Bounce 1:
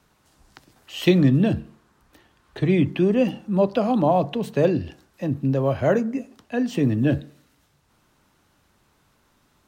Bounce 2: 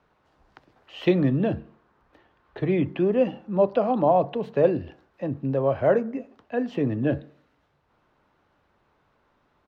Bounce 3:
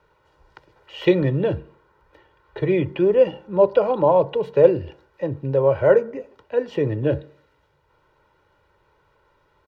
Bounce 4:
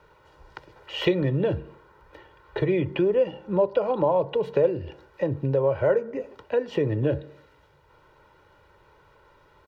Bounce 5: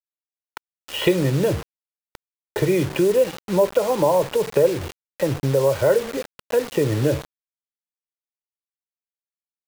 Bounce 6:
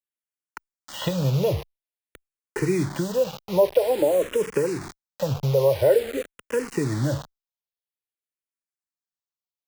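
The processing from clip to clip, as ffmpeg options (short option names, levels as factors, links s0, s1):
-af "firequalizer=gain_entry='entry(220,0);entry(480,7);entry(8500,-20)':delay=0.05:min_phase=1,volume=0.501"
-af "aecho=1:1:2.1:0.73,volume=1.33"
-af "acompressor=threshold=0.0355:ratio=2.5,volume=1.78"
-af "acrusher=bits=5:mix=0:aa=0.000001,volume=1.58"
-filter_complex "[0:a]asplit=2[s0][s1];[s1]afreqshift=-0.49[s2];[s0][s2]amix=inputs=2:normalize=1"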